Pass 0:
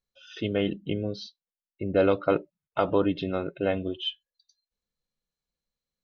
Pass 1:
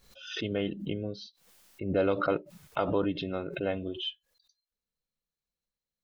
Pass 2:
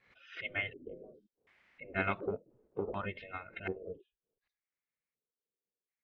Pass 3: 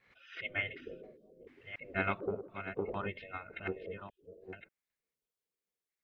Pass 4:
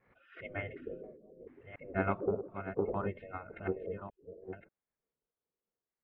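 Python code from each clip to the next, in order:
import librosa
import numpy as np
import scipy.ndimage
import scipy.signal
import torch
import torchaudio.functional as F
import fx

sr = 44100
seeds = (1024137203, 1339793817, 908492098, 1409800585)

y1 = fx.pre_swell(x, sr, db_per_s=78.0)
y1 = y1 * librosa.db_to_amplitude(-5.0)
y2 = fx.spec_gate(y1, sr, threshold_db=-10, keep='weak')
y2 = fx.filter_lfo_lowpass(y2, sr, shape='square', hz=0.68, low_hz=440.0, high_hz=2100.0, q=4.7)
y2 = fx.upward_expand(y2, sr, threshold_db=-40.0, expansion=1.5)
y3 = fx.reverse_delay(y2, sr, ms=586, wet_db=-9.5)
y4 = scipy.signal.sosfilt(scipy.signal.butter(2, 1100.0, 'lowpass', fs=sr, output='sos'), y3)
y4 = y4 * librosa.db_to_amplitude(4.0)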